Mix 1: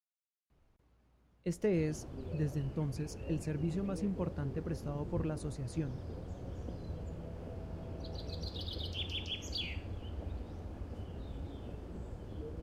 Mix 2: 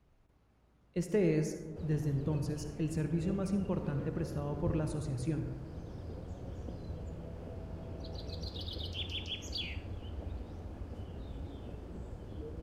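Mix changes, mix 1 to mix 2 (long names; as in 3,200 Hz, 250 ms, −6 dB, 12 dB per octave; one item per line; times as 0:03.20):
speech: entry −0.50 s
reverb: on, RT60 1.5 s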